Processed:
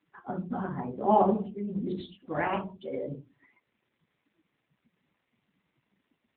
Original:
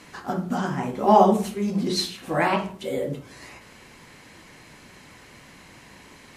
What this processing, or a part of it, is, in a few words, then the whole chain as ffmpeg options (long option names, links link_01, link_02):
mobile call with aggressive noise cancelling: -filter_complex "[0:a]asettb=1/sr,asplit=3[link_01][link_02][link_03];[link_01]atrim=end=1.084[link_04];[link_02]atrim=start=1.08:end=2.69,asetpts=PTS-STARTPTS,afade=type=in:duration=0.004:curve=qsin,afade=type=out:start_time=1.606:duration=0.004:curve=qsin,acrossover=split=9000[link_05][link_06];[link_06]acompressor=threshold=-57dB:ratio=4:attack=1:release=60[link_07];[link_05][link_07]amix=inputs=2:normalize=0[link_08];[link_03]atrim=start=2.686[link_09];[link_04][link_08]acrossfade=duration=0.004:curve1=hsin:curve2=qsin[link_10];[link_10][link_09]acrossfade=duration=0.004:curve1=qsin:curve2=hsin,highpass=100,afftdn=noise_reduction=22:noise_floor=-34,volume=-6dB" -ar 8000 -c:a libopencore_amrnb -b:a 7950